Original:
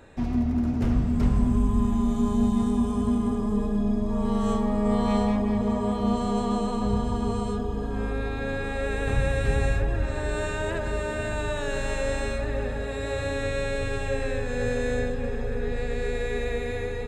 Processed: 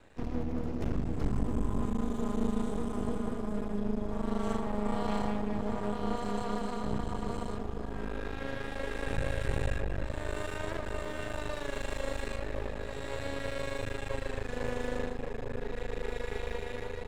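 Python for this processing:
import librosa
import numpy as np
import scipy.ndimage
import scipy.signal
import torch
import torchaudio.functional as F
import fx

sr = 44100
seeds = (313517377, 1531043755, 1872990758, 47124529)

y = np.maximum(x, 0.0)
y = fx.hum_notches(y, sr, base_hz=60, count=4)
y = F.gain(torch.from_numpy(y), -4.0).numpy()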